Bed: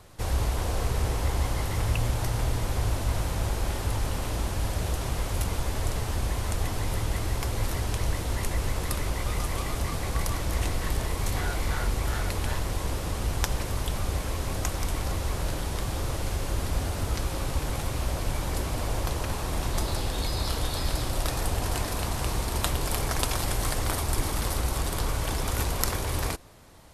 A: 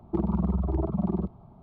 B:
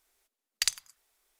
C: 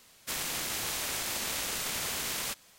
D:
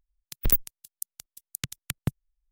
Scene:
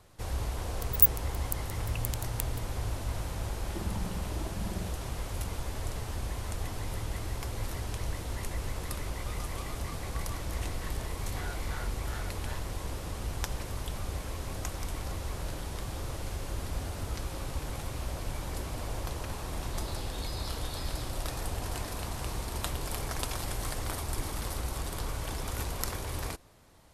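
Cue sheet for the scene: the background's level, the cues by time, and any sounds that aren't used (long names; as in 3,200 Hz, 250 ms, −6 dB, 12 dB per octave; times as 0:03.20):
bed −7 dB
0:00.50: mix in D −15.5 dB + RIAA equalisation recording
0:03.62: mix in A −13 dB
not used: B, C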